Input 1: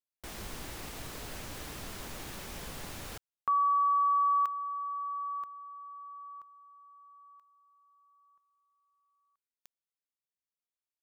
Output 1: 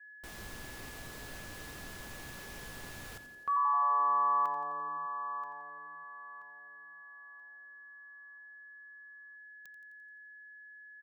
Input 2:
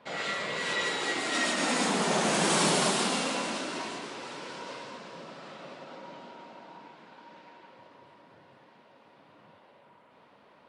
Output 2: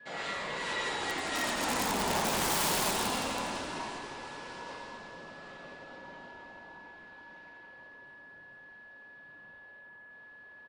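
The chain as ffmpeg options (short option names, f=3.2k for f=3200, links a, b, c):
-filter_complex "[0:a]aeval=exprs='(mod(8.91*val(0)+1,2)-1)/8.91':c=same,asplit=2[a][b];[b]asplit=7[c][d][e][f][g][h][i];[c]adelay=86,afreqshift=-140,volume=-11dB[j];[d]adelay=172,afreqshift=-280,volume=-15.2dB[k];[e]adelay=258,afreqshift=-420,volume=-19.3dB[l];[f]adelay=344,afreqshift=-560,volume=-23.5dB[m];[g]adelay=430,afreqshift=-700,volume=-27.6dB[n];[h]adelay=516,afreqshift=-840,volume=-31.8dB[o];[i]adelay=602,afreqshift=-980,volume=-35.9dB[p];[j][k][l][m][n][o][p]amix=inputs=7:normalize=0[q];[a][q]amix=inputs=2:normalize=0,aeval=exprs='val(0)+0.00562*sin(2*PI*1700*n/s)':c=same,adynamicequalizer=threshold=0.00447:dfrequency=900:dqfactor=2.7:tfrequency=900:tqfactor=2.7:attack=5:release=100:ratio=0.375:range=3:mode=boostabove:tftype=bell,volume=-5dB"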